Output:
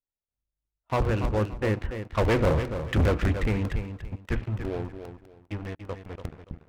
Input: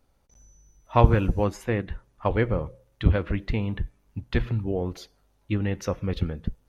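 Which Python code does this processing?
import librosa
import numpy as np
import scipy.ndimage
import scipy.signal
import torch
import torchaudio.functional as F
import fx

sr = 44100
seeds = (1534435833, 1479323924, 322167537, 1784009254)

p1 = fx.doppler_pass(x, sr, speed_mps=12, closest_m=4.4, pass_at_s=2.66)
p2 = scipy.signal.sosfilt(scipy.signal.butter(6, 3000.0, 'lowpass', fs=sr, output='sos'), p1)
p3 = fx.peak_eq(p2, sr, hz=190.0, db=-5.0, octaves=0.31)
p4 = fx.hum_notches(p3, sr, base_hz=60, count=5)
p5 = fx.leveller(p4, sr, passes=5)
p6 = p5 + fx.echo_feedback(p5, sr, ms=287, feedback_pct=25, wet_db=-9.0, dry=0)
p7 = fx.buffer_crackle(p6, sr, first_s=0.65, period_s=0.2, block=64, kind='repeat')
p8 = fx.doppler_dist(p7, sr, depth_ms=0.22)
y = F.gain(torch.from_numpy(p8), -7.0).numpy()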